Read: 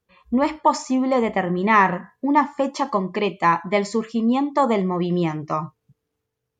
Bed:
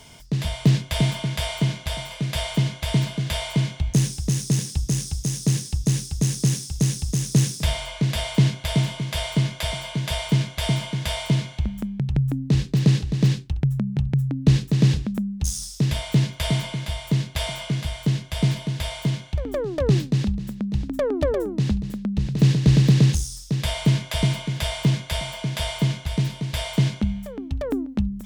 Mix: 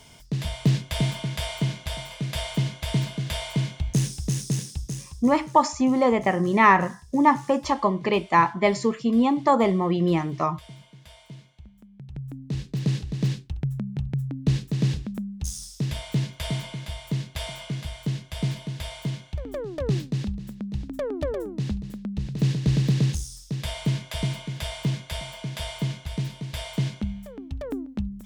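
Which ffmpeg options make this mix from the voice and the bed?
-filter_complex "[0:a]adelay=4900,volume=0.944[s0];[1:a]volume=4.47,afade=t=out:st=4.39:d=0.97:silence=0.112202,afade=t=in:st=11.87:d=1.19:silence=0.149624[s1];[s0][s1]amix=inputs=2:normalize=0"

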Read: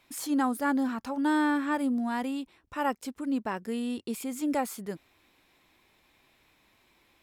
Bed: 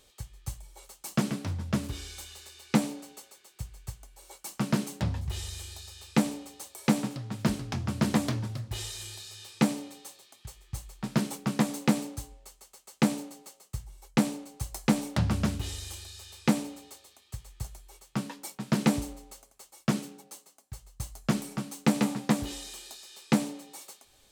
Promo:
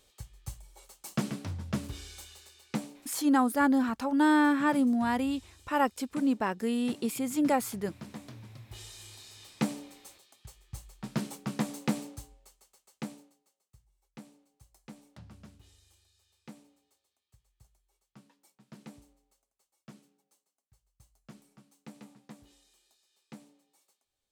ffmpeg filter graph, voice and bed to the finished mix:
-filter_complex "[0:a]adelay=2950,volume=1.33[s0];[1:a]volume=2.82,afade=t=out:st=2.23:d=0.93:silence=0.188365,afade=t=in:st=8.26:d=1.16:silence=0.223872,afade=t=out:st=12.08:d=1.32:silence=0.112202[s1];[s0][s1]amix=inputs=2:normalize=0"

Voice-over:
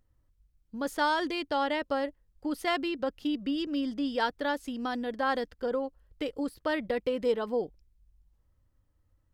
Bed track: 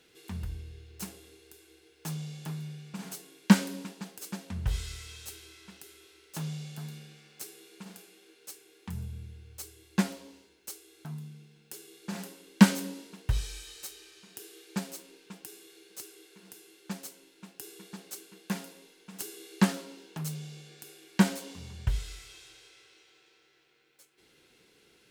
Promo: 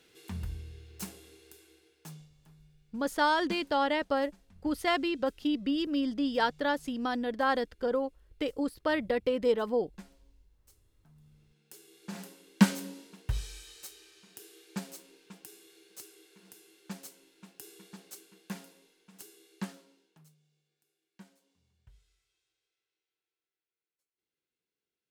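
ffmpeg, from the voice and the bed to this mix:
-filter_complex "[0:a]adelay=2200,volume=1.12[s0];[1:a]volume=7.5,afade=t=out:st=1.54:d=0.76:silence=0.0841395,afade=t=in:st=11.14:d=0.94:silence=0.125893,afade=t=out:st=17.74:d=2.62:silence=0.0446684[s1];[s0][s1]amix=inputs=2:normalize=0"

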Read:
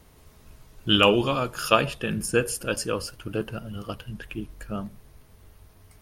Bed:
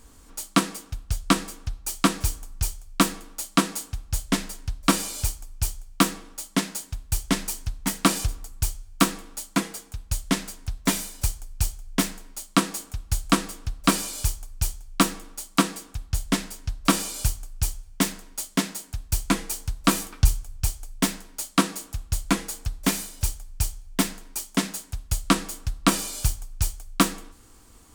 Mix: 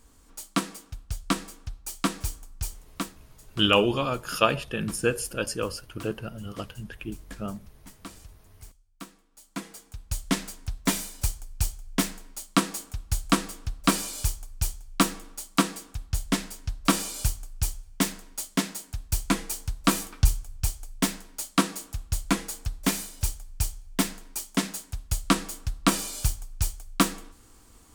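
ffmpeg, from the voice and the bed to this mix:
-filter_complex "[0:a]adelay=2700,volume=0.794[s0];[1:a]volume=5.62,afade=t=out:st=2.75:d=0.43:silence=0.141254,afade=t=in:st=9.31:d=1.02:silence=0.0891251[s1];[s0][s1]amix=inputs=2:normalize=0"

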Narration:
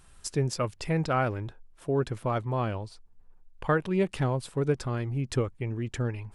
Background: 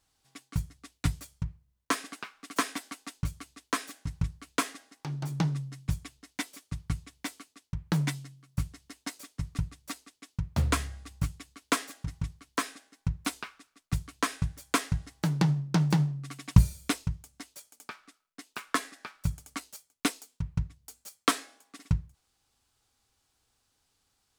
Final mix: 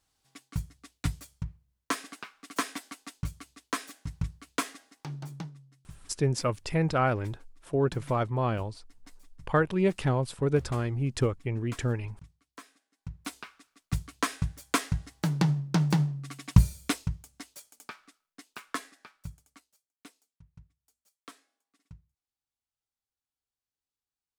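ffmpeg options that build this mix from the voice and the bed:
-filter_complex "[0:a]adelay=5850,volume=1.12[s0];[1:a]volume=6.31,afade=t=out:st=5.05:d=0.47:silence=0.158489,afade=t=in:st=12.89:d=0.96:silence=0.125893,afade=t=out:st=17.7:d=1.98:silence=0.0668344[s1];[s0][s1]amix=inputs=2:normalize=0"

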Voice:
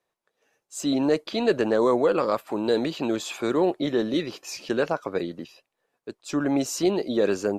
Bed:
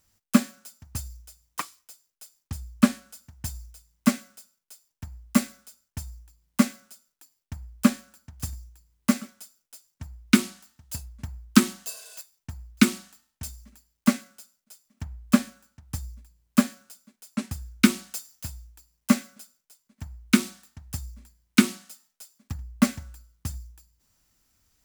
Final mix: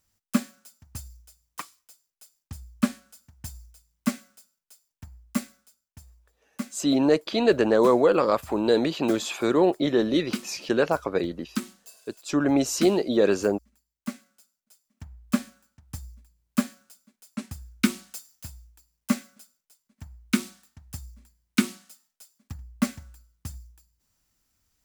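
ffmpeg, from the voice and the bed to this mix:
-filter_complex "[0:a]adelay=6000,volume=1.26[s0];[1:a]volume=1.5,afade=t=out:st=5.1:d=0.89:silence=0.398107,afade=t=in:st=14.15:d=1.38:silence=0.375837[s1];[s0][s1]amix=inputs=2:normalize=0"

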